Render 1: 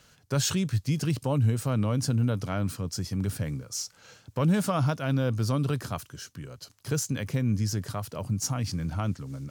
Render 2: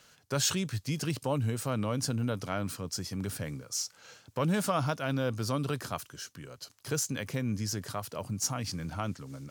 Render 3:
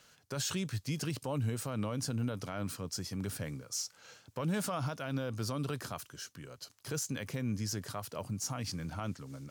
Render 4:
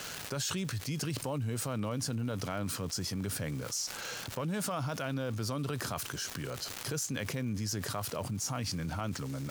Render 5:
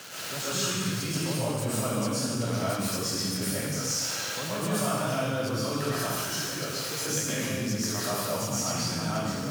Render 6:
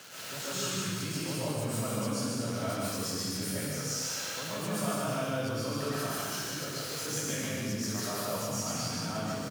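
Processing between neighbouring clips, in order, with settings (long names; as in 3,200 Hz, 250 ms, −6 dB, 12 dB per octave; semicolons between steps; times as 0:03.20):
low-shelf EQ 200 Hz −10.5 dB
brickwall limiter −23 dBFS, peak gain reduction 7.5 dB; level −2.5 dB
surface crackle 490 per second −47 dBFS; envelope flattener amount 70%; level −2.5 dB
high-pass filter 120 Hz; comb and all-pass reverb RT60 1.5 s, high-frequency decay 1×, pre-delay 85 ms, DRR −9.5 dB; level −2.5 dB
single-tap delay 149 ms −3 dB; level −6 dB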